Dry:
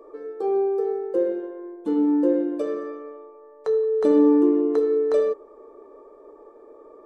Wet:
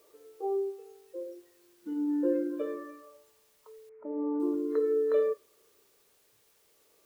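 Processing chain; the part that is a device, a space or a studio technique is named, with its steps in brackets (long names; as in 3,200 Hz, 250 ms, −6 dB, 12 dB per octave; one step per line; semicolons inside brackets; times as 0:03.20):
shortwave radio (band-pass filter 320–2,900 Hz; amplitude tremolo 0.39 Hz, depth 77%; auto-filter notch square 0.33 Hz 780–2,100 Hz; white noise bed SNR 21 dB)
0:03.89–0:04.40: elliptic low-pass filter 2,200 Hz, stop band 40 dB
noise reduction from a noise print of the clip's start 14 dB
level −3 dB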